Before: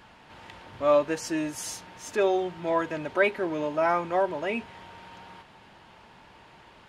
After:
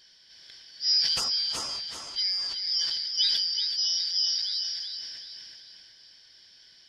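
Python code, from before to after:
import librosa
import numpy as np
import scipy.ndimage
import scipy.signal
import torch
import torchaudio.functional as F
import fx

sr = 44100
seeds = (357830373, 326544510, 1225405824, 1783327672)

y = fx.band_shuffle(x, sr, order='4321')
y = fx.lowpass(y, sr, hz=5600.0, slope=12, at=(1.24, 2.46))
y = fx.peak_eq(y, sr, hz=330.0, db=-13.0, octaves=1.8, at=(3.59, 4.87))
y = fx.echo_feedback(y, sr, ms=378, feedback_pct=41, wet_db=-6)
y = fx.sustainer(y, sr, db_per_s=24.0)
y = y * 10.0 ** (-4.0 / 20.0)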